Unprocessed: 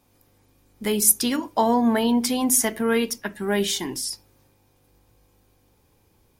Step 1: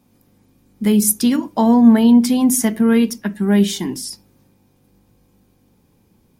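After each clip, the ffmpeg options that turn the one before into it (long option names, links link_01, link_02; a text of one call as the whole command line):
ffmpeg -i in.wav -af "equalizer=frequency=200:width=1.3:gain=13.5" out.wav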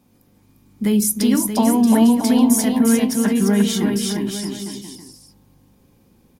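ffmpeg -i in.wav -filter_complex "[0:a]alimiter=limit=-9.5dB:level=0:latency=1:release=74,asplit=2[link_01][link_02];[link_02]aecho=0:1:350|630|854|1033|1177:0.631|0.398|0.251|0.158|0.1[link_03];[link_01][link_03]amix=inputs=2:normalize=0" out.wav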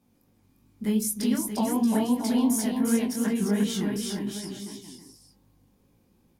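ffmpeg -i in.wav -af "flanger=delay=17.5:depth=6.8:speed=2.7,volume=-6dB" out.wav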